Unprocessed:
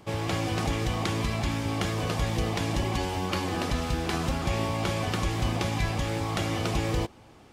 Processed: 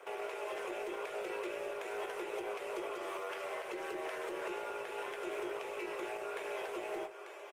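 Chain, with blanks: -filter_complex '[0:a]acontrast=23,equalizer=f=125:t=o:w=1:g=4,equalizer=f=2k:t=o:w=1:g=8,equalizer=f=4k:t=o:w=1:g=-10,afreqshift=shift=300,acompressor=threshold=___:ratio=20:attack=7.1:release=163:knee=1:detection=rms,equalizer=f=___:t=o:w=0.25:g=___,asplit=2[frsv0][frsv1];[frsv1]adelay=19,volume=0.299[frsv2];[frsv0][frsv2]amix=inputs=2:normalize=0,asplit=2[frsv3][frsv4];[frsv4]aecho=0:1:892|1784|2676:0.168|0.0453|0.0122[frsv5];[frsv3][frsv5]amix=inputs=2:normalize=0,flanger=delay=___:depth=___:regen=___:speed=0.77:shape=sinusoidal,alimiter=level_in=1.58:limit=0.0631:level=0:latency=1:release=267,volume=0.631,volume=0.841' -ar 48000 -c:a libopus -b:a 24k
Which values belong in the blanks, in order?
0.0562, 440, -6.5, 7.1, 9.4, -71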